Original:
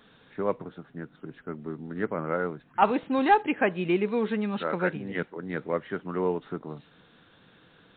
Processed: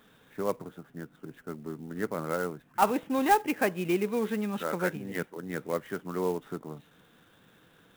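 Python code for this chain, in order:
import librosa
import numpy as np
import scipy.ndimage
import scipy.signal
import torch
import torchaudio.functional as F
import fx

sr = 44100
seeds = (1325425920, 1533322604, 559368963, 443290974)

y = fx.clock_jitter(x, sr, seeds[0], jitter_ms=0.027)
y = y * librosa.db_to_amplitude(-2.5)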